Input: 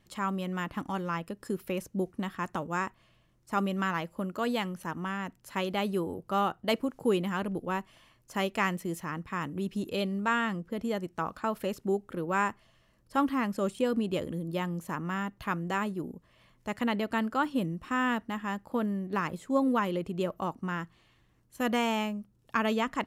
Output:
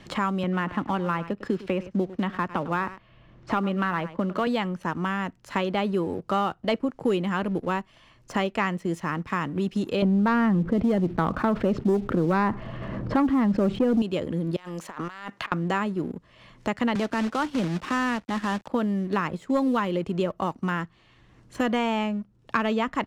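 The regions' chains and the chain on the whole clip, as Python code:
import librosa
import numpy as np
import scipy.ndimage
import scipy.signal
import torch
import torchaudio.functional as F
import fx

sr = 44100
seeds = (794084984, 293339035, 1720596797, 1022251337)

y = fx.chain(x, sr, fx.lowpass(hz=2900.0, slope=12),
    fx.echo_single(ms=102, db=-16.5),
    fx.band_squash(depth_pct=40), at=(0.43, 4.47))
y = fx.chain(y, sr, fx.lowpass(hz=1600.0, slope=12),
    fx.low_shelf(hz=360.0, db=10.5),
    fx.env_flatten(amount_pct=50), at=(10.02, 14.02))
y = fx.chain(y, sr, fx.highpass(hz=1200.0, slope=6),
    fx.over_compress(threshold_db=-49.0, ratio=-1.0), at=(14.56, 15.52))
y = fx.chain(y, sr, fx.quant_companded(bits=4),
    fx.transient(attack_db=-9, sustain_db=-3),
    fx.band_squash(depth_pct=70), at=(16.95, 18.68))
y = scipy.signal.sosfilt(scipy.signal.butter(2, 6200.0, 'lowpass', fs=sr, output='sos'), y)
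y = fx.leveller(y, sr, passes=1)
y = fx.band_squash(y, sr, depth_pct=70)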